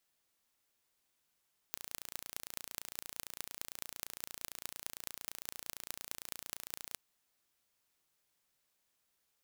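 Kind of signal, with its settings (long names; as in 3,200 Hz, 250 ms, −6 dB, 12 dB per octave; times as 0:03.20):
impulse train 28.8 per second, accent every 6, −11 dBFS 5.21 s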